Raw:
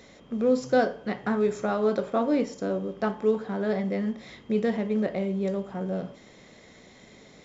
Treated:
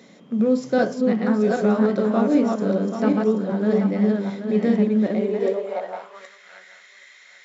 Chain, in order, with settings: backward echo that repeats 391 ms, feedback 48%, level -2 dB; high-pass sweep 190 Hz -> 1.7 kHz, 4.99–6.40 s

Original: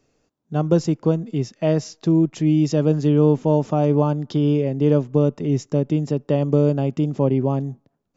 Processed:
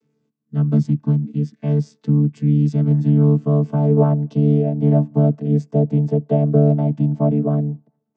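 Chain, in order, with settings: vocoder on a held chord bare fifth, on D3; peaking EQ 670 Hz -11 dB 0.84 oct, from 2.91 s -3 dB, from 3.97 s +4.5 dB; trim +3.5 dB

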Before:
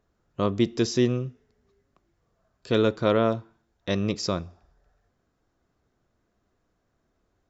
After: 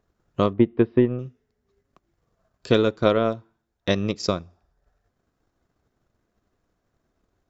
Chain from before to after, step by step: 0.53–1.19 s: Bessel low-pass 1.6 kHz, order 8; transient shaper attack +7 dB, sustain -6 dB

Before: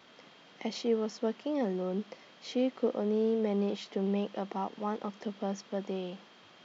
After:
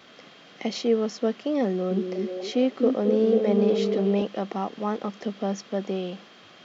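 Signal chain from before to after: band-stop 920 Hz, Q 6.5; 1.66–4.22 s: repeats whose band climbs or falls 246 ms, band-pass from 290 Hz, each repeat 0.7 oct, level -1 dB; trim +7 dB

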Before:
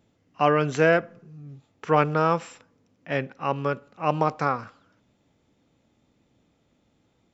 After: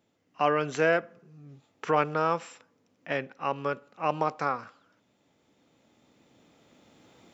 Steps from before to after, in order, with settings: recorder AGC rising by 6.2 dB/s; high-pass 290 Hz 6 dB/octave; trim -3.5 dB

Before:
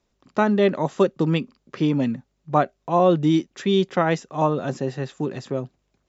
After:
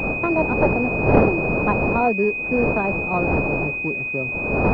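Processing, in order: gliding tape speed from 165% -> 92%; wind noise 580 Hz -21 dBFS; class-D stage that switches slowly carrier 2.5 kHz; trim -1.5 dB

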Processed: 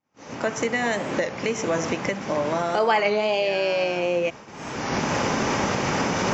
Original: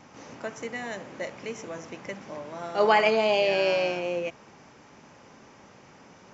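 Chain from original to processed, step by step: recorder AGC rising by 31 dB/s; expander -33 dBFS; warped record 33 1/3 rpm, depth 100 cents

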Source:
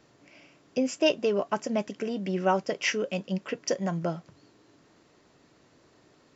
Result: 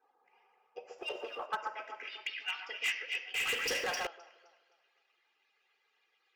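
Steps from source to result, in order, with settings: harmonic-percussive separation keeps percussive; reverberation RT60 0.90 s, pre-delay 3 ms, DRR 8 dB; resampled via 16 kHz; bass shelf 220 Hz -9.5 dB; band-pass sweep 900 Hz -> 2.6 kHz, 0.92–2.36 s; 2.03–2.65 s: ten-band graphic EQ 125 Hz +5 dB, 2 kHz +6 dB, 4 kHz +12 dB; echo whose repeats swap between lows and highs 130 ms, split 1.5 kHz, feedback 59%, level -4.5 dB; 0.98–1.46 s: waveshaping leveller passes 1; hard clipper -24.5 dBFS, distortion -12 dB; 3.34–4.07 s: waveshaping leveller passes 5; trim -3.5 dB

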